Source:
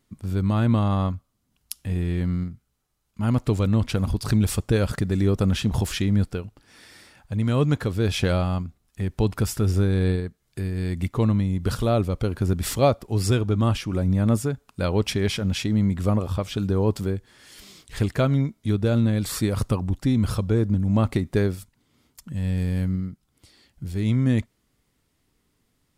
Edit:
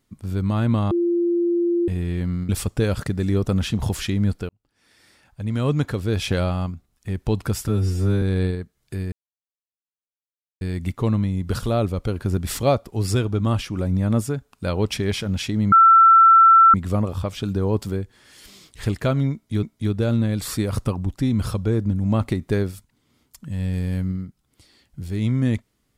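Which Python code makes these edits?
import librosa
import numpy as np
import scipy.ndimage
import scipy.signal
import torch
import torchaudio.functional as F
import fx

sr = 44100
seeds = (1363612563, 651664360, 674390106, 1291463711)

y = fx.edit(x, sr, fx.bleep(start_s=0.91, length_s=0.97, hz=345.0, db=-17.0),
    fx.cut(start_s=2.49, length_s=1.92),
    fx.fade_in_span(start_s=6.41, length_s=1.24),
    fx.stretch_span(start_s=9.6, length_s=0.27, factor=2.0),
    fx.insert_silence(at_s=10.77, length_s=1.49),
    fx.insert_tone(at_s=15.88, length_s=1.02, hz=1340.0, db=-8.0),
    fx.repeat(start_s=18.47, length_s=0.3, count=2), tone=tone)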